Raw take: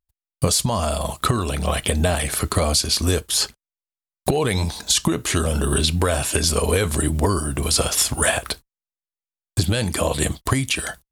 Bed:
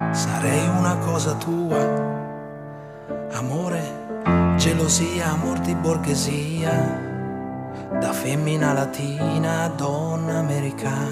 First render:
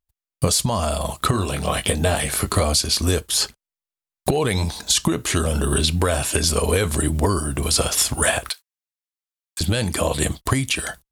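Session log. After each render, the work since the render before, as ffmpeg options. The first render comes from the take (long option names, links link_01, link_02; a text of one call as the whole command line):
ffmpeg -i in.wav -filter_complex "[0:a]asettb=1/sr,asplit=3[link_01][link_02][link_03];[link_01]atrim=end=1.314[link_04];[link_02]atrim=start=1.31:end=2.63,asetpts=PTS-STARTPTS,afade=type=in:duration=0.004:curve=qsin,afade=type=out:start_time=1.316:duration=0.004:curve=qsin,asplit=2[link_05][link_06];[link_06]adelay=20,volume=-6dB[link_07];[link_05][link_07]amix=inputs=2:normalize=0,atrim=end_sample=58212[link_08];[link_03]atrim=start=2.626[link_09];[link_04][link_08]acrossfade=duration=0.004:curve1=hsin:curve2=qsin[link_10];[link_10][link_09]acrossfade=duration=0.004:curve1=qsin:curve2=hsin,asettb=1/sr,asplit=3[link_11][link_12][link_13];[link_11]atrim=end=8.494[link_14];[link_12]atrim=start=8.49:end=9.61,asetpts=PTS-STARTPTS,afade=type=in:duration=0.004:curve=qsin,afade=type=out:start_time=1.116:duration=0.004:curve=qsin,highpass=1500[link_15];[link_13]atrim=start=9.606[link_16];[link_14][link_15]acrossfade=duration=0.004:curve1=hsin:curve2=qsin[link_17];[link_17][link_16]acrossfade=duration=0.004:curve1=qsin:curve2=hsin" out.wav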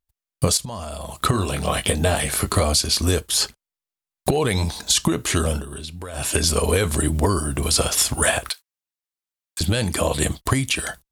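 ffmpeg -i in.wav -filter_complex "[0:a]asettb=1/sr,asplit=3[link_01][link_02][link_03];[link_01]atrim=end=0.574[link_04];[link_02]atrim=start=0.57:end=1.23,asetpts=PTS-STARTPTS,afade=type=in:duration=0.004:curve=qsin,afade=type=out:start_time=0.656:duration=0.004:curve=qsin,acompressor=threshold=-28dB:ratio=6:attack=3.2:release=140:knee=1:detection=peak[link_05];[link_03]atrim=start=1.226[link_06];[link_04][link_05]acrossfade=duration=0.004:curve1=hsin:curve2=qsin[link_07];[link_07][link_06]acrossfade=duration=0.004:curve1=qsin:curve2=hsin,asplit=3[link_08][link_09][link_10];[link_08]atrim=end=5.64,asetpts=PTS-STARTPTS,afade=type=out:start_time=5.51:duration=0.13:silence=0.188365[link_11];[link_09]atrim=start=5.64:end=6.13,asetpts=PTS-STARTPTS,volume=-14.5dB[link_12];[link_10]atrim=start=6.13,asetpts=PTS-STARTPTS,afade=type=in:duration=0.13:silence=0.188365[link_13];[link_11][link_12][link_13]concat=n=3:v=0:a=1" out.wav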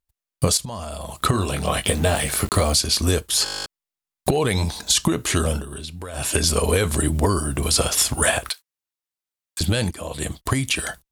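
ffmpeg -i in.wav -filter_complex "[0:a]asettb=1/sr,asplit=3[link_01][link_02][link_03];[link_01]atrim=end=1.864[link_04];[link_02]atrim=start=1.86:end=2.79,asetpts=PTS-STARTPTS,afade=type=in:duration=0.004:curve=qsin,afade=type=out:start_time=0.926:duration=0.004:curve=qsin,aeval=exprs='val(0)*gte(abs(val(0)),0.0266)':channel_layout=same[link_05];[link_03]atrim=start=2.786[link_06];[link_04][link_05]acrossfade=duration=0.004:curve1=hsin:curve2=qsin[link_07];[link_07][link_06]acrossfade=duration=0.004:curve1=qsin:curve2=hsin,asplit=13[link_08][link_09][link_10][link_11][link_12][link_13][link_14][link_15][link_16][link_17][link_18][link_19][link_20];[link_08]atrim=end=3.462[link_21];[link_09]atrim=start=3.438:end=3.462[link_22];[link_10]atrim=start=3.438:end=3.462[link_23];[link_11]atrim=start=3.438:end=3.462[link_24];[link_12]atrim=start=3.438:end=3.462[link_25];[link_13]atrim=start=3.438:end=3.462[link_26];[link_14]atrim=start=3.438:end=3.462[link_27];[link_15]atrim=start=3.438:end=3.462[link_28];[link_16]atrim=start=3.438:end=3.462[link_29];[link_17]atrim=start=3.438:end=3.462[link_30];[link_18]atrim=start=3.438:end=3.462[link_31];[link_19]atrim=start=3.658:end=9.91,asetpts=PTS-STARTPTS,afade=type=out:start_time=6.248:duration=0.004:curve=hsin:silence=0.149624[link_32];[link_20]atrim=start=9.91,asetpts=PTS-STARTPTS,afade=type=in:duration=0.78:silence=0.149624[link_33];[link_21][link_22]acrossfade=duration=0.004:curve1=hsin:curve2=hsin[link_34];[link_34][link_23]acrossfade=duration=0.004:curve1=hsin:curve2=hsin[link_35];[link_35][link_24]acrossfade=duration=0.004:curve1=hsin:curve2=hsin[link_36];[link_36][link_25]acrossfade=duration=0.004:curve1=hsin:curve2=hsin[link_37];[link_37][link_26]acrossfade=duration=0.004:curve1=hsin:curve2=hsin[link_38];[link_38][link_27]acrossfade=duration=0.004:curve1=hsin:curve2=hsin[link_39];[link_39][link_28]acrossfade=duration=0.004:curve1=hsin:curve2=hsin[link_40];[link_40][link_29]acrossfade=duration=0.004:curve1=hsin:curve2=hsin[link_41];[link_41][link_30]acrossfade=duration=0.004:curve1=hsin:curve2=hsin[link_42];[link_42][link_31]acrossfade=duration=0.004:curve1=hsin:curve2=hsin[link_43];[link_32][link_33]concat=n=2:v=0:a=1[link_44];[link_43][link_44]acrossfade=duration=0.004:curve1=hsin:curve2=hsin" out.wav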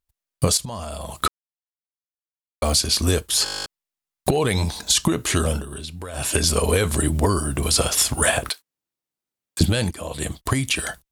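ffmpeg -i in.wav -filter_complex "[0:a]asettb=1/sr,asplit=3[link_01][link_02][link_03];[link_01]atrim=end=8.384[link_04];[link_02]atrim=start=8.38:end=9.66,asetpts=PTS-STARTPTS,afade=type=in:duration=0.004:curve=qsin,afade=type=out:start_time=1.276:duration=0.004:curve=qsin,equalizer=frequency=210:width=0.41:gain=11.5[link_05];[link_03]atrim=start=9.656[link_06];[link_04][link_05]acrossfade=duration=0.004:curve1=hsin:curve2=qsin[link_07];[link_07][link_06]acrossfade=duration=0.004:curve1=qsin:curve2=hsin,asplit=3[link_08][link_09][link_10];[link_08]atrim=end=1.28,asetpts=PTS-STARTPTS,afade=type=out:start_time=1.276:duration=0.004:curve=hsin[link_11];[link_09]atrim=start=1.28:end=2.62,asetpts=PTS-STARTPTS,volume=0[link_12];[link_10]atrim=start=2.62,asetpts=PTS-STARTPTS,afade=type=in:duration=0.004:curve=hsin[link_13];[link_11][link_12][link_13]concat=n=3:v=0:a=1" out.wav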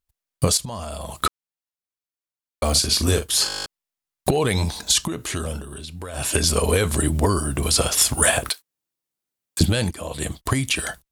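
ffmpeg -i in.wav -filter_complex "[0:a]asettb=1/sr,asplit=3[link_01][link_02][link_03];[link_01]atrim=end=2.714[link_04];[link_02]atrim=start=2.71:end=3.49,asetpts=PTS-STARTPTS,afade=type=in:duration=0.004:curve=qsin,afade=type=out:start_time=0.776:duration=0.004:curve=qsin,asplit=2[link_05][link_06];[link_06]adelay=42,volume=-8.5dB[link_07];[link_05][link_07]amix=inputs=2:normalize=0,atrim=end_sample=34398[link_08];[link_03]atrim=start=3.486[link_09];[link_04][link_08]acrossfade=duration=0.004:curve1=hsin:curve2=qsin[link_10];[link_10][link_09]acrossfade=duration=0.004:curve1=qsin:curve2=hsin,asettb=1/sr,asplit=3[link_11][link_12][link_13];[link_11]atrim=end=5.034[link_14];[link_12]atrim=start=5.03:end=5.95,asetpts=PTS-STARTPTS,afade=type=in:duration=0.004:curve=qsin,afade=type=out:start_time=0.916:duration=0.004:curve=qsin,acompressor=threshold=-34dB:ratio=1.5:attack=3.2:release=140:knee=1:detection=peak[link_15];[link_13]atrim=start=5.946[link_16];[link_14][link_15]acrossfade=duration=0.004:curve1=hsin:curve2=qsin[link_17];[link_17][link_16]acrossfade=duration=0.004:curve1=qsin:curve2=hsin,asettb=1/sr,asplit=3[link_18][link_19][link_20];[link_18]atrim=end=8.014[link_21];[link_19]atrim=start=8.01:end=9.62,asetpts=PTS-STARTPTS,afade=type=in:duration=0.004:curve=qsin,afade=type=out:start_time=1.606:duration=0.004:curve=qsin,highshelf=frequency=6000:gain=4.5[link_22];[link_20]atrim=start=9.616[link_23];[link_21][link_22]acrossfade=duration=0.004:curve1=hsin:curve2=qsin[link_24];[link_24][link_23]acrossfade=duration=0.004:curve1=qsin:curve2=hsin" out.wav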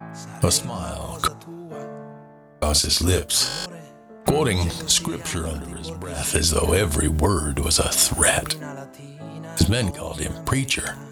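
ffmpeg -i in.wav -i bed.wav -filter_complex "[1:a]volume=-14.5dB[link_01];[0:a][link_01]amix=inputs=2:normalize=0" out.wav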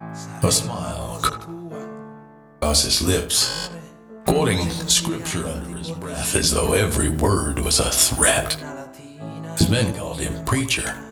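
ffmpeg -i in.wav -filter_complex "[0:a]asplit=2[link_01][link_02];[link_02]adelay=18,volume=-4.5dB[link_03];[link_01][link_03]amix=inputs=2:normalize=0,asplit=2[link_04][link_05];[link_05]adelay=81,lowpass=frequency=2000:poles=1,volume=-11.5dB,asplit=2[link_06][link_07];[link_07]adelay=81,lowpass=frequency=2000:poles=1,volume=0.47,asplit=2[link_08][link_09];[link_09]adelay=81,lowpass=frequency=2000:poles=1,volume=0.47,asplit=2[link_10][link_11];[link_11]adelay=81,lowpass=frequency=2000:poles=1,volume=0.47,asplit=2[link_12][link_13];[link_13]adelay=81,lowpass=frequency=2000:poles=1,volume=0.47[link_14];[link_04][link_06][link_08][link_10][link_12][link_14]amix=inputs=6:normalize=0" out.wav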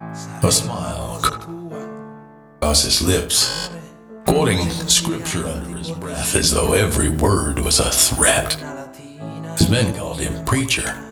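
ffmpeg -i in.wav -af "volume=2.5dB,alimiter=limit=-2dB:level=0:latency=1" out.wav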